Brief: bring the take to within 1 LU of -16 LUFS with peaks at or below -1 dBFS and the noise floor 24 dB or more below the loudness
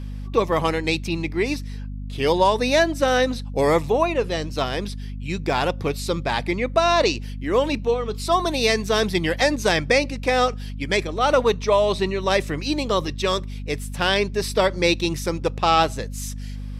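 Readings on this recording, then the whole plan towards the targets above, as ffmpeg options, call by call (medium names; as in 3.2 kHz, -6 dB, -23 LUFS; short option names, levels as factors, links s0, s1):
hum 50 Hz; highest harmonic 250 Hz; hum level -29 dBFS; loudness -22.0 LUFS; peak level -4.5 dBFS; loudness target -16.0 LUFS
-> -af "bandreject=f=50:t=h:w=4,bandreject=f=100:t=h:w=4,bandreject=f=150:t=h:w=4,bandreject=f=200:t=h:w=4,bandreject=f=250:t=h:w=4"
-af "volume=2,alimiter=limit=0.891:level=0:latency=1"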